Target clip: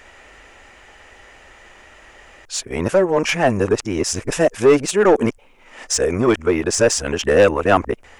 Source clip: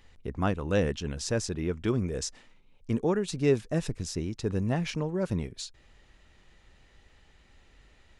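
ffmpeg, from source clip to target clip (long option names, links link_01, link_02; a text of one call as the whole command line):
ffmpeg -i in.wav -filter_complex "[0:a]areverse,asplit=2[link_01][link_02];[link_02]highpass=frequency=720:poles=1,volume=16dB,asoftclip=type=tanh:threshold=-11.5dB[link_03];[link_01][link_03]amix=inputs=2:normalize=0,lowpass=frequency=7200:poles=1,volume=-6dB,equalizer=frequency=160:width_type=o:width=0.67:gain=-8,equalizer=frequency=630:width_type=o:width=0.67:gain=3,equalizer=frequency=4000:width_type=o:width=0.67:gain=-12,asplit=2[link_04][link_05];[link_05]asoftclip=type=hard:threshold=-20.5dB,volume=-6dB[link_06];[link_04][link_06]amix=inputs=2:normalize=0,volume=7dB" out.wav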